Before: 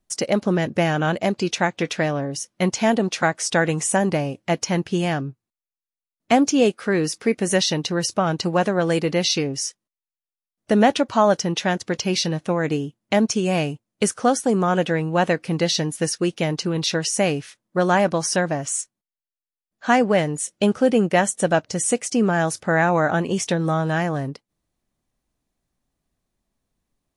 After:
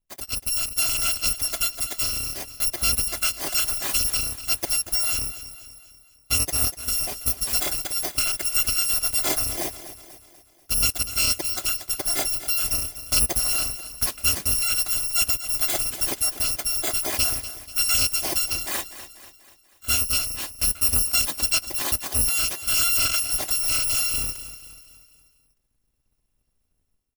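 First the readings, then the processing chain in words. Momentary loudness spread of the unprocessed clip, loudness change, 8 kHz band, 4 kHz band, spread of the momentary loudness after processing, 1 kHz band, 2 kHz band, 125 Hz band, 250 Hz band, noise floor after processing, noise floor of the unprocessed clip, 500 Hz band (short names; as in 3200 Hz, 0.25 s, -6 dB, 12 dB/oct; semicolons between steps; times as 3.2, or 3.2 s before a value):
7 LU, 0.0 dB, +5.0 dB, +3.0 dB, 8 LU, -13.5 dB, -5.5 dB, -12.5 dB, -20.5 dB, -70 dBFS, under -85 dBFS, -19.0 dB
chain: FFT order left unsorted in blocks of 256 samples; tilt shelf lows +4 dB, about 700 Hz; AGC gain up to 11.5 dB; feedback echo 0.243 s, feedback 49%, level -13.5 dB; gain -8 dB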